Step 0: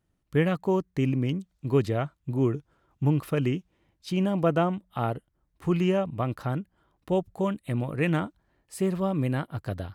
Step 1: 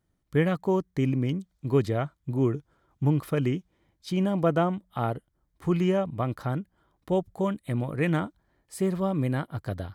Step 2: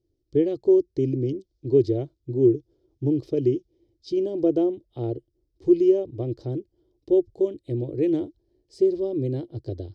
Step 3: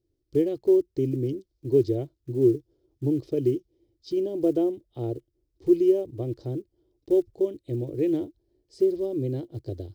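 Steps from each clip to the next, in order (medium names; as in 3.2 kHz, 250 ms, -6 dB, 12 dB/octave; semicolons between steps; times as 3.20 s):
band-stop 2.7 kHz, Q 8
FFT filter 130 Hz 0 dB, 180 Hz -19 dB, 350 Hz +12 dB, 1.3 kHz -28 dB, 5.1 kHz +2 dB, 11 kHz -27 dB
block-companded coder 7-bit; trim -2 dB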